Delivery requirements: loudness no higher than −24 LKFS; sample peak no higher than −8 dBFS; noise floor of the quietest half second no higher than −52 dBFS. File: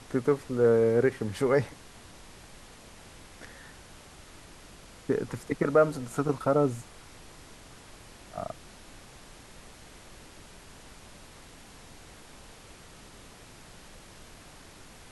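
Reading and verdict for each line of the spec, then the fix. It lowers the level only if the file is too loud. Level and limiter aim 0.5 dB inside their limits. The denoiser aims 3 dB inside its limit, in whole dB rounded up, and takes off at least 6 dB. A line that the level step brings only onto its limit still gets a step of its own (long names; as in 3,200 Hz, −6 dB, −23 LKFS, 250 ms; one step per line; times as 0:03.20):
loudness −27.5 LKFS: in spec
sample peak −10.5 dBFS: in spec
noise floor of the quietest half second −50 dBFS: out of spec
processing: broadband denoise 6 dB, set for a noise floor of −50 dBFS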